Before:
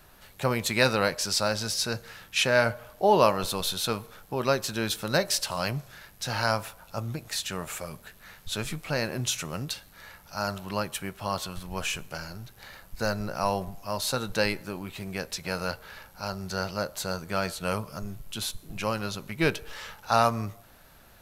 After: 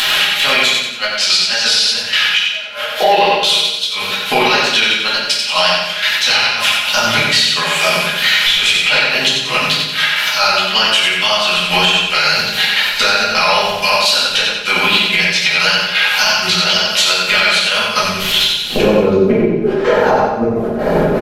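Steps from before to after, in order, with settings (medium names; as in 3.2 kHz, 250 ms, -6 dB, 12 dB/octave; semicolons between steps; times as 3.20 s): saturation -11 dBFS, distortion -21 dB; band-pass filter 3.1 kHz, Q 2.8, from 18.76 s 400 Hz; wow and flutter 110 cents; upward compressor, threshold -41 dBFS; inverted gate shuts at -25 dBFS, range -37 dB; trance gate "xx.xxx.x.x." 127 bpm -12 dB; compression 6:1, threshold -50 dBFS, peak gain reduction 16.5 dB; comb 4.8 ms, depth 44%; crackle 15 per s -75 dBFS; feedback delay 91 ms, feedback 46%, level -5 dB; reverberation RT60 0.70 s, pre-delay 4 ms, DRR -7.5 dB; loudness maximiser +34 dB; trim -1 dB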